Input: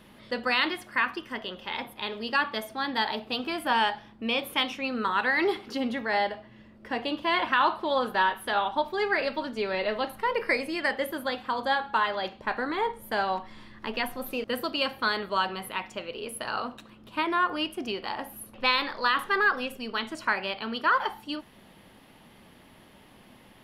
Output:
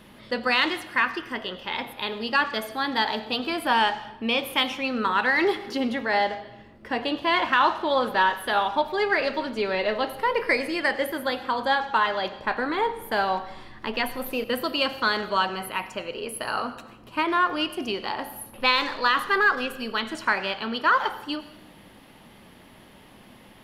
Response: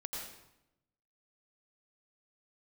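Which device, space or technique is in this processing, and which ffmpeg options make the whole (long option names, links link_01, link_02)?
saturated reverb return: -filter_complex "[0:a]asplit=2[link_01][link_02];[1:a]atrim=start_sample=2205[link_03];[link_02][link_03]afir=irnorm=-1:irlink=0,asoftclip=type=tanh:threshold=-23dB,volume=-10dB[link_04];[link_01][link_04]amix=inputs=2:normalize=0,asettb=1/sr,asplit=3[link_05][link_06][link_07];[link_05]atrim=end=15.544[link_08];[link_06]atrim=start=15.54:end=17.25,asetpts=PTS-STARTPTS,afade=type=in:duration=0.004:curve=qsin,afade=type=out:start_time=1.706:duration=0.004:curve=qsin,bandreject=frequency=3600:width=5.7[link_09];[link_07]atrim=start=17.246[link_10];[link_08][link_09]acrossfade=duration=0.004:curve1=hsin:curve2=qsin[link_11];[link_11][link_10]acrossfade=duration=0.004:curve1=qsin:curve2=hsin,volume=2dB"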